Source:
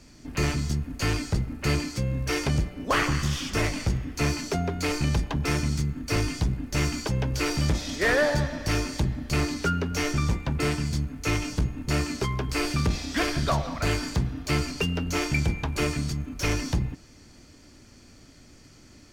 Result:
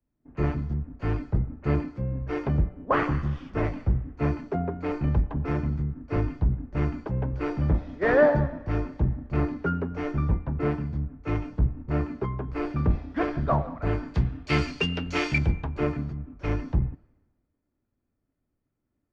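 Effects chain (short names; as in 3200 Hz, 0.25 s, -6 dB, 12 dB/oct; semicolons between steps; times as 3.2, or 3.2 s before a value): LPF 1200 Hz 12 dB/oct, from 14.14 s 2500 Hz, from 15.38 s 1300 Hz; three-band expander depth 100%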